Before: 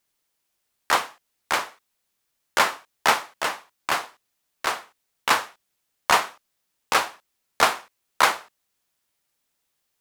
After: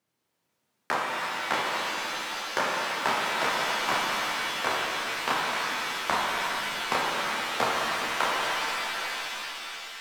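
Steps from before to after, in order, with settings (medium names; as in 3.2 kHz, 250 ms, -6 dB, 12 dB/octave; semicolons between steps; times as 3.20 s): high-pass 120 Hz 24 dB/octave; compression, threshold -25 dBFS, peak gain reduction 12.5 dB; tilt EQ -3 dB/octave; on a send: repeats whose band climbs or falls 410 ms, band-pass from 280 Hz, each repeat 1.4 oct, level -8.5 dB; on the sum: pitch-shifted reverb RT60 3.6 s, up +7 st, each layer -2 dB, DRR -2.5 dB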